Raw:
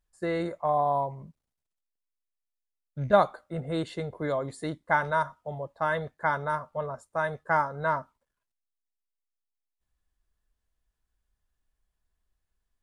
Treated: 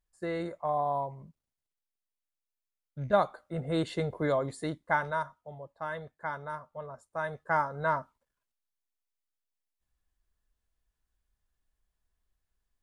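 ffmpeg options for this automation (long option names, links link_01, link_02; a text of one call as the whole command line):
ffmpeg -i in.wav -af "volume=10dB,afade=type=in:start_time=3.28:duration=0.76:silence=0.446684,afade=type=out:start_time=4.04:duration=1.37:silence=0.266073,afade=type=in:start_time=6.84:duration=0.97:silence=0.421697" out.wav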